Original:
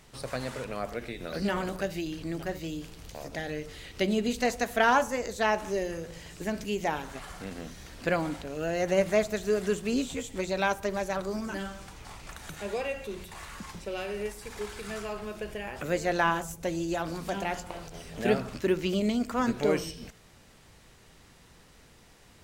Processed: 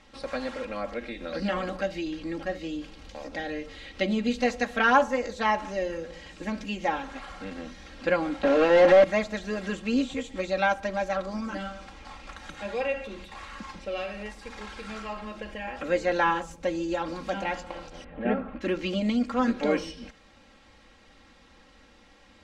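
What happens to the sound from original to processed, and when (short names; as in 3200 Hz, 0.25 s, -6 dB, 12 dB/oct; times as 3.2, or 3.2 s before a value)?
8.43–9.04 overdrive pedal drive 31 dB, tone 1300 Hz, clips at -12 dBFS
18.04–18.61 Gaussian blur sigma 3.8 samples
whole clip: LPF 4400 Hz 12 dB/oct; low shelf 180 Hz -4.5 dB; comb 3.7 ms, depth 91%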